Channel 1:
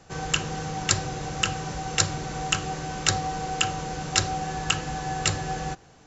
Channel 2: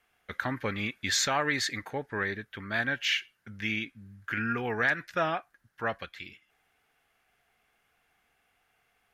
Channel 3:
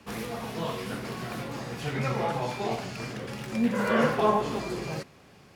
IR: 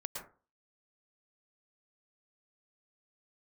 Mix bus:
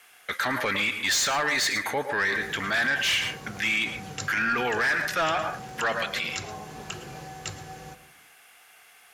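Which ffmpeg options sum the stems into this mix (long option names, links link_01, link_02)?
-filter_complex "[0:a]highpass=62,adelay=2200,volume=-14dB,asplit=2[link_01][link_02];[link_02]volume=-5dB[link_03];[1:a]equalizer=frequency=11000:width_type=o:width=1.9:gain=12.5,asplit=2[link_04][link_05];[link_05]highpass=frequency=720:poles=1,volume=21dB,asoftclip=type=tanh:threshold=-7dB[link_06];[link_04][link_06]amix=inputs=2:normalize=0,lowpass=frequency=7100:poles=1,volume=-6dB,volume=-2dB,asplit=2[link_07][link_08];[link_08]volume=-6.5dB[link_09];[2:a]acompressor=threshold=-34dB:ratio=6,adelay=2250,volume=-7dB[link_10];[3:a]atrim=start_sample=2205[link_11];[link_03][link_09]amix=inputs=2:normalize=0[link_12];[link_12][link_11]afir=irnorm=-1:irlink=0[link_13];[link_01][link_07][link_10][link_13]amix=inputs=4:normalize=0,alimiter=limit=-18.5dB:level=0:latency=1:release=23"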